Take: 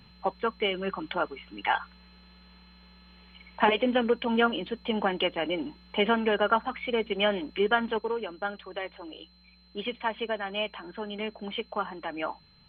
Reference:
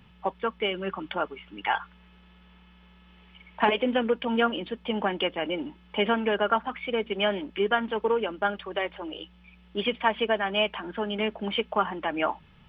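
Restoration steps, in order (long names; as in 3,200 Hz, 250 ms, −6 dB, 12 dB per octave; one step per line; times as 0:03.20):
notch filter 4,100 Hz, Q 30
level correction +6 dB, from 0:07.98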